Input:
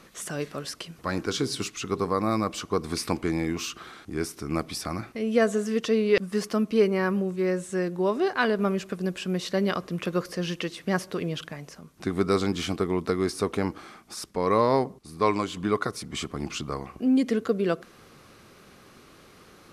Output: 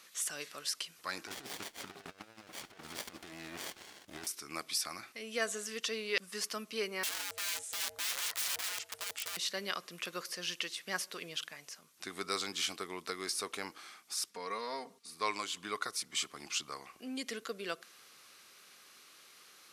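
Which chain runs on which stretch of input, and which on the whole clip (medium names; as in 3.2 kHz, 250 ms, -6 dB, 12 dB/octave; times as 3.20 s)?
1.27–4.27 s: small resonant body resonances 1.1/3.3 kHz, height 12 dB, ringing for 30 ms + compressor with a negative ratio -29 dBFS, ratio -0.5 + sliding maximum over 33 samples
7.03–9.37 s: integer overflow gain 26.5 dB + ring modulator 280 Hz
14.30–15.14 s: treble shelf 11 kHz -8.5 dB + comb 4.3 ms, depth 79% + compression 2:1, threshold -27 dBFS
whole clip: high-pass 540 Hz 6 dB/octave; tilt shelf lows -8 dB, about 1.5 kHz; trim -6 dB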